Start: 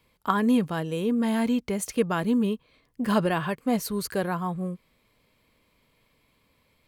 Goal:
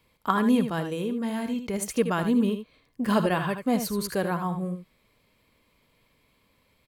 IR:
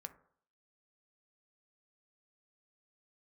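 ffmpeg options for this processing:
-filter_complex "[0:a]asettb=1/sr,asplit=3[s0][s1][s2];[s0]atrim=end=0.924[s3];[s1]atrim=start=0.92:end=1.74,asetpts=PTS-STARTPTS,afade=t=in:d=0.004:c=qsin,afade=t=out:st=0.816:d=0.004:c=qsin,acompressor=threshold=0.0447:ratio=4[s4];[s2]atrim=start=1.736[s5];[s3][s4]acrossfade=d=0.004:c1=hsin:c2=qsin[s6];[s6][s5]acrossfade=d=0.004:c1=qsin:c2=hsin,aecho=1:1:78:0.355"

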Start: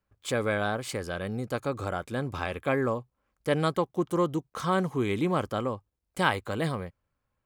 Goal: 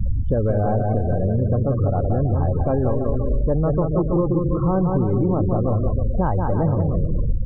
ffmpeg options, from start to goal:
-filter_complex "[0:a]aeval=exprs='val(0)+0.5*0.0335*sgn(val(0))':c=same,aemphasis=mode=reproduction:type=bsi,aeval=exprs='0.376*(cos(1*acos(clip(val(0)/0.376,-1,1)))-cos(1*PI/2))+0.00266*(cos(8*acos(clip(val(0)/0.376,-1,1)))-cos(8*PI/2))':c=same,lowshelf=f=70:g=7,asplit=2[s0][s1];[s1]aecho=0:1:180|324|439.2|531.4|605.1:0.631|0.398|0.251|0.158|0.1[s2];[s0][s2]amix=inputs=2:normalize=0,afftfilt=real='re*gte(hypot(re,im),0.0794)':imag='im*gte(hypot(re,im),0.0794)':win_size=1024:overlap=0.75,lowpass=f=780:t=q:w=1.8,acompressor=threshold=0.1:ratio=5,volume=1.58"

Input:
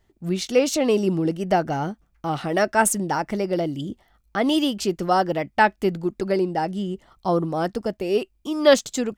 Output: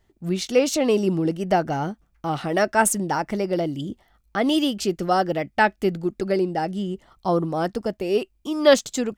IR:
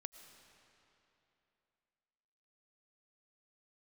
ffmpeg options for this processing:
-filter_complex "[0:a]asettb=1/sr,asplit=3[s0][s1][s2];[s0]atrim=end=4.404[s3];[s1]atrim=start=4.4:end=6.75,asetpts=PTS-STARTPTS,afade=t=in:d=0.004:c=qsin,afade=t=out:st=2.346:d=0.004:c=qsin,equalizer=f=980:w=6.3:g=-7.5[s4];[s2]atrim=start=6.746[s5];[s3][s4]acrossfade=d=0.004:c1=hsin:c2=qsin[s6];[s6][s5]acrossfade=d=0.004:c1=qsin:c2=hsin"

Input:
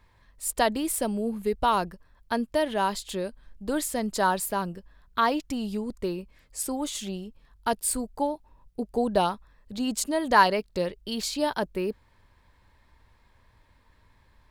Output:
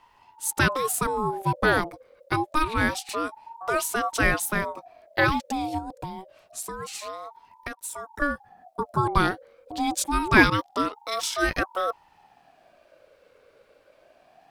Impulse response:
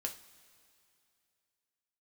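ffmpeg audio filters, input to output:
-filter_complex "[0:a]asettb=1/sr,asplit=3[s0][s1][s2];[s0]atrim=end=5.784[s3];[s1]atrim=start=5.78:end=8.22,asetpts=PTS-STARTPTS,afade=t=in:d=0.004:c=qsin,afade=t=out:st=2.436:d=0.004:c=qsin,acompressor=threshold=0.02:ratio=10[s4];[s2]atrim=start=8.216[s5];[s3][s4]acrossfade=d=0.004:c1=hsin:c2=qsin[s6];[s6][s5]acrossfade=d=0.004:c1=qsin:c2=hsin,aeval=exprs='val(0)*sin(2*PI*730*n/s+730*0.3/0.26*sin(2*PI*0.26*n/s))':c=same,volume=1.78"

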